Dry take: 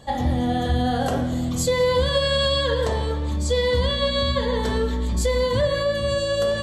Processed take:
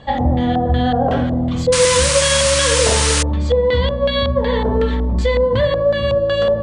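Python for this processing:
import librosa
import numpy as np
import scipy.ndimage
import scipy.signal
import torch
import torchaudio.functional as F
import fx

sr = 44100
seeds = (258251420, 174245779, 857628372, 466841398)

p1 = fx.peak_eq(x, sr, hz=360.0, db=-3.5, octaves=0.24)
p2 = fx.rider(p1, sr, range_db=10, speed_s=0.5)
p3 = p1 + (p2 * 10.0 ** (1.0 / 20.0))
p4 = fx.filter_lfo_lowpass(p3, sr, shape='square', hz=2.7, low_hz=750.0, high_hz=2900.0, q=1.3)
p5 = fx.spec_paint(p4, sr, seeds[0], shape='noise', start_s=1.72, length_s=1.51, low_hz=870.0, high_hz=10000.0, level_db=-17.0)
y = p5 * 10.0 ** (-1.5 / 20.0)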